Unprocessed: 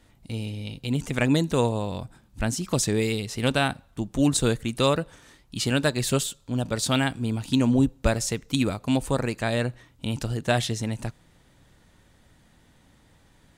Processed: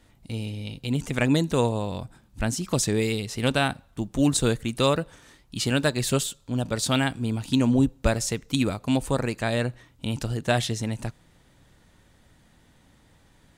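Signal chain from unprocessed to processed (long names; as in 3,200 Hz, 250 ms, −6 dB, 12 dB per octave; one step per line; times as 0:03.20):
0:03.62–0:05.93: floating-point word with a short mantissa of 6 bits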